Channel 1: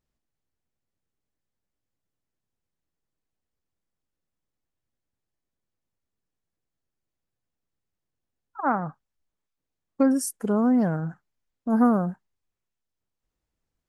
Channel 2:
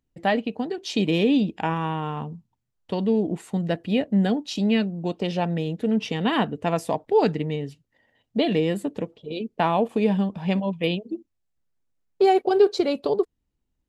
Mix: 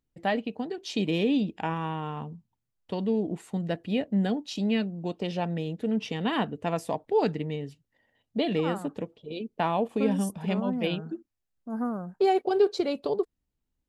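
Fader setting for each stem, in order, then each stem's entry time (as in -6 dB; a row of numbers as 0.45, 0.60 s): -11.0, -5.0 dB; 0.00, 0.00 s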